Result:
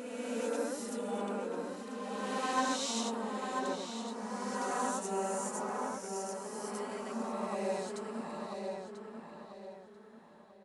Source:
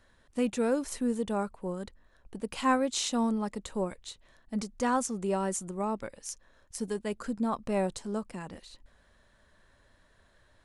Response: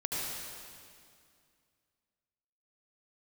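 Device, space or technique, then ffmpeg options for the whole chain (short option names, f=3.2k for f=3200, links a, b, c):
ghost voice: -filter_complex "[0:a]asplit=2[a][b];[b]adelay=990,lowpass=f=2.5k:p=1,volume=-4.5dB,asplit=2[c][d];[d]adelay=990,lowpass=f=2.5k:p=1,volume=0.38,asplit=2[e][f];[f]adelay=990,lowpass=f=2.5k:p=1,volume=0.38,asplit=2[g][h];[h]adelay=990,lowpass=f=2.5k:p=1,volume=0.38,asplit=2[i][j];[j]adelay=990,lowpass=f=2.5k:p=1,volume=0.38[k];[a][c][e][g][i][k]amix=inputs=6:normalize=0,areverse[l];[1:a]atrim=start_sample=2205[m];[l][m]afir=irnorm=-1:irlink=0,areverse,highpass=f=480:p=1,volume=-8dB"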